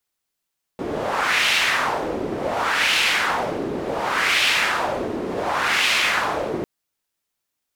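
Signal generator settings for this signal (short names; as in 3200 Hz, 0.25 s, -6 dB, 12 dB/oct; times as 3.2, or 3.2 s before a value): wind-like swept noise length 5.85 s, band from 360 Hz, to 2700 Hz, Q 1.8, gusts 4, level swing 8 dB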